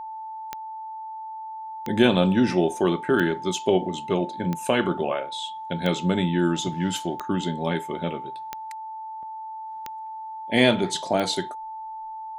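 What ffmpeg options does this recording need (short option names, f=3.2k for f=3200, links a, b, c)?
-af "adeclick=t=4,bandreject=f=880:w=30"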